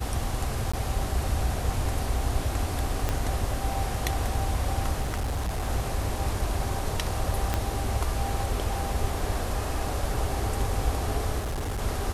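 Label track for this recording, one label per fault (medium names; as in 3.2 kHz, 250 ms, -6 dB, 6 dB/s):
0.720000	0.730000	dropout 15 ms
3.090000	3.090000	pop -12 dBFS
5.010000	5.680000	clipped -25 dBFS
7.540000	7.540000	pop -11 dBFS
11.390000	11.820000	clipped -27 dBFS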